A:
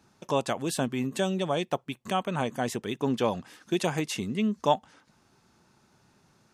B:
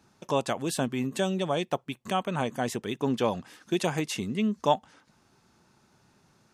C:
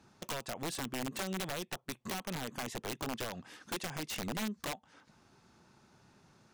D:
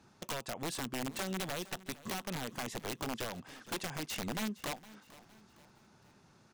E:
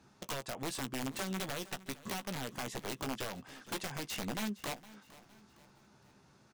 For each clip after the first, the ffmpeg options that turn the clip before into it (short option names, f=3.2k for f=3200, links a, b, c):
-af anull
-af "highshelf=f=11k:g=-10.5,acompressor=threshold=-33dB:ratio=20,aeval=exprs='(mod(35.5*val(0)+1,2)-1)/35.5':c=same"
-af "aecho=1:1:462|924|1386:0.112|0.0494|0.0217"
-filter_complex "[0:a]asplit=2[a][b];[b]adelay=15,volume=-9dB[c];[a][c]amix=inputs=2:normalize=0,volume=-1dB"